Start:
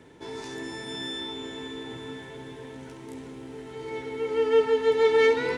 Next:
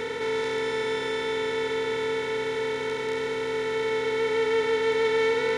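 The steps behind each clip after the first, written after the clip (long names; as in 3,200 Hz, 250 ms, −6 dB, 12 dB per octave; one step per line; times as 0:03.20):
compressor on every frequency bin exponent 0.2
parametric band 350 Hz −7.5 dB 0.22 octaves
level −6 dB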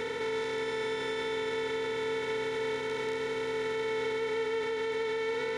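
brickwall limiter −22 dBFS, peak gain reduction 7.5 dB
level −3 dB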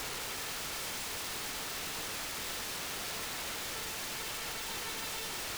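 wrap-around overflow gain 34.5 dB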